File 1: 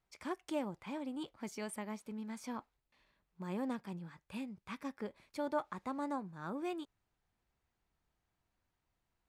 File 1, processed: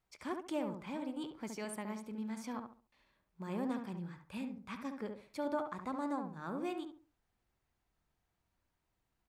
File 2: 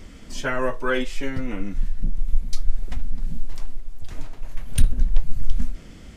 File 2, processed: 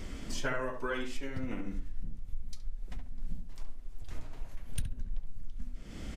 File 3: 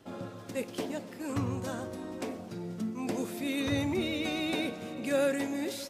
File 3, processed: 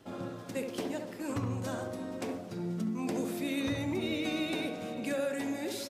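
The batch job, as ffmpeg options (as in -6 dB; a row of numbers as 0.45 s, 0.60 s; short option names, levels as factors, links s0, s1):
-filter_complex "[0:a]acompressor=threshold=0.0316:ratio=8,asplit=2[s0][s1];[s1]adelay=69,lowpass=f=1400:p=1,volume=0.596,asplit=2[s2][s3];[s3]adelay=69,lowpass=f=1400:p=1,volume=0.32,asplit=2[s4][s5];[s5]adelay=69,lowpass=f=1400:p=1,volume=0.32,asplit=2[s6][s7];[s7]adelay=69,lowpass=f=1400:p=1,volume=0.32[s8];[s2][s4][s6][s8]amix=inputs=4:normalize=0[s9];[s0][s9]amix=inputs=2:normalize=0"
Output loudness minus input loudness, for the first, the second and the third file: +1.0 LU, -12.5 LU, -1.5 LU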